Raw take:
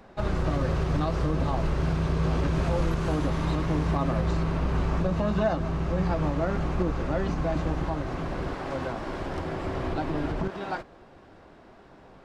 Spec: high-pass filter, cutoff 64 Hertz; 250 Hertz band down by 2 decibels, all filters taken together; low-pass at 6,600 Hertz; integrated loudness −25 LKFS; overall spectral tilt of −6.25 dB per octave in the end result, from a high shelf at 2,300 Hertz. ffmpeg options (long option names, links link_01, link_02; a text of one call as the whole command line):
ffmpeg -i in.wav -af "highpass=64,lowpass=6600,equalizer=frequency=250:width_type=o:gain=-3,highshelf=frequency=2300:gain=-8,volume=5dB" out.wav